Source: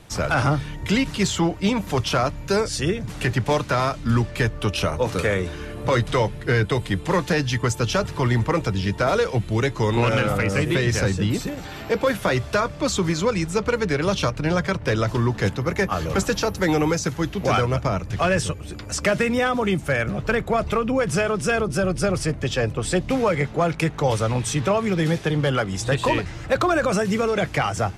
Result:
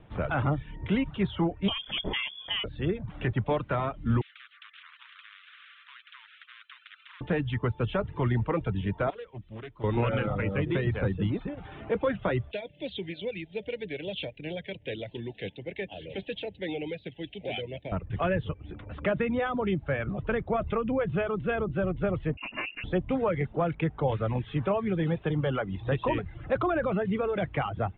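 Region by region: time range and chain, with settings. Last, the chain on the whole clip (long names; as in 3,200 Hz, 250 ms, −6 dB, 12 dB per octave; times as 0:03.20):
0:01.68–0:02.64: voice inversion scrambler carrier 3,400 Hz + low-shelf EQ 370 Hz +6.5 dB + multiband upward and downward compressor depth 40%
0:04.21–0:07.21: Butterworth high-pass 1,500 Hz 72 dB per octave + every bin compressed towards the loudest bin 10 to 1
0:09.10–0:09.84: first-order pre-emphasis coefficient 0.8 + highs frequency-modulated by the lows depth 0.57 ms
0:12.51–0:17.92: Butterworth band-reject 1,200 Hz, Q 0.71 + spectral tilt +4.5 dB per octave
0:22.37–0:22.84: lower of the sound and its delayed copy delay 2.8 ms + voice inversion scrambler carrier 2,800 Hz
whole clip: reverb reduction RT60 0.51 s; Butterworth low-pass 3,600 Hz 96 dB per octave; tilt shelving filter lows +4 dB, about 1,400 Hz; level −9 dB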